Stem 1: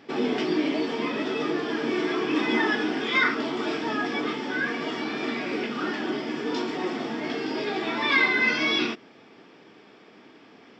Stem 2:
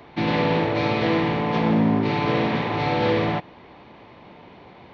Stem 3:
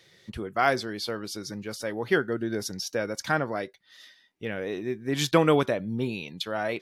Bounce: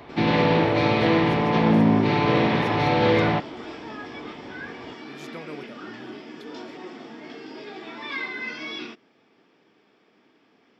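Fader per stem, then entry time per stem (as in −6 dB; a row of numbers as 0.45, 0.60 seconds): −10.0, +1.5, −19.5 decibels; 0.00, 0.00, 0.00 seconds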